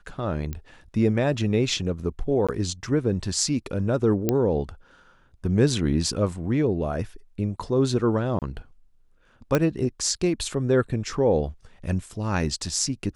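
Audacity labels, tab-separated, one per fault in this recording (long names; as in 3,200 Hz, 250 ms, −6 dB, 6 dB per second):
0.530000	0.530000	click −18 dBFS
2.470000	2.490000	drop-out 16 ms
4.290000	4.290000	click −8 dBFS
8.390000	8.420000	drop-out 28 ms
9.550000	9.550000	click −8 dBFS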